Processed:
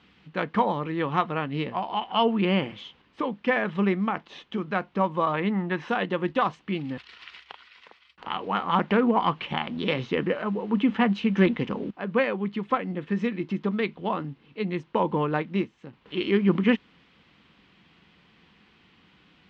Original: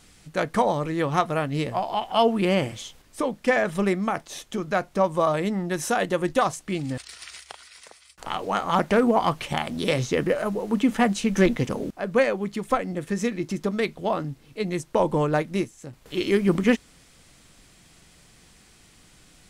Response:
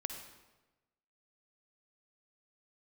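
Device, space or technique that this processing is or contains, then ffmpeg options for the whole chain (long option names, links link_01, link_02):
guitar cabinet: -filter_complex "[0:a]highpass=96,equalizer=frequency=120:width_type=q:width=4:gain=-7,equalizer=frequency=200:width_type=q:width=4:gain=4,equalizer=frequency=630:width_type=q:width=4:gain=-7,equalizer=frequency=1000:width_type=q:width=4:gain=4,equalizer=frequency=2900:width_type=q:width=4:gain=4,lowpass=frequency=3500:width=0.5412,lowpass=frequency=3500:width=1.3066,asettb=1/sr,asplit=3[link_01][link_02][link_03];[link_01]atrim=end=5.324[link_04];[link_02]atrim=start=5.32:end=5.89,asetpts=PTS-STARTPTS,afade=type=in:duration=0.004:curve=qsin,afade=type=out:start_time=0.566:duration=0.004:curve=qsin,equalizer=frequency=1000:width_type=o:width=1:gain=4,equalizer=frequency=2000:width_type=o:width=1:gain=4,equalizer=frequency=8000:width_type=o:width=1:gain=-10[link_05];[link_03]atrim=start=5.886[link_06];[link_04][link_05]acrossfade=duration=0.004:curve1=hsin:curve2=qsin[link_07];[link_07][link_06]acrossfade=duration=0.004:curve1=qsin:curve2=hsin,volume=-2dB"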